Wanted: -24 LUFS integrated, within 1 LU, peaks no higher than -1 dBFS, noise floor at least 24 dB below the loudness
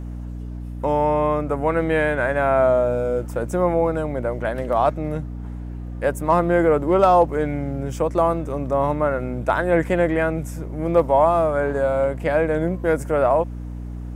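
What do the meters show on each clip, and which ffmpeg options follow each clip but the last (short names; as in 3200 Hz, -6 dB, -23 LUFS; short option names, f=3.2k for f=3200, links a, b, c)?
hum 60 Hz; harmonics up to 300 Hz; hum level -28 dBFS; loudness -20.5 LUFS; peak -5.5 dBFS; loudness target -24.0 LUFS
-> -af "bandreject=f=60:t=h:w=6,bandreject=f=120:t=h:w=6,bandreject=f=180:t=h:w=6,bandreject=f=240:t=h:w=6,bandreject=f=300:t=h:w=6"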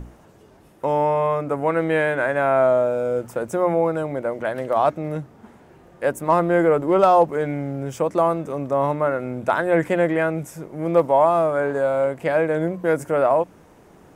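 hum none; loudness -21.0 LUFS; peak -5.5 dBFS; loudness target -24.0 LUFS
-> -af "volume=-3dB"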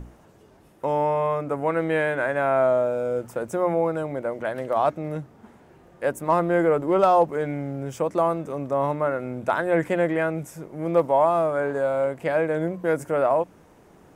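loudness -24.0 LUFS; peak -8.5 dBFS; noise floor -53 dBFS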